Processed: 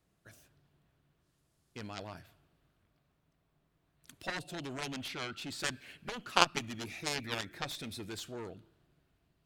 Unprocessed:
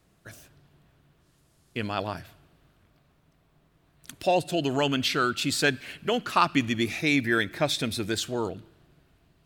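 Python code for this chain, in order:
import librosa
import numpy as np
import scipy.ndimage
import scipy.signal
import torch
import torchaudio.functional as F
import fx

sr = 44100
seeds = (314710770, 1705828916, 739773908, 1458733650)

y = fx.high_shelf(x, sr, hz=7100.0, db=-9.0, at=(5.03, 5.6))
y = fx.cheby_harmonics(y, sr, harmonics=(3, 4, 6, 7), levels_db=(-10, -28, -42, -29), full_scale_db=-6.0)
y = y * librosa.db_to_amplitude(3.0)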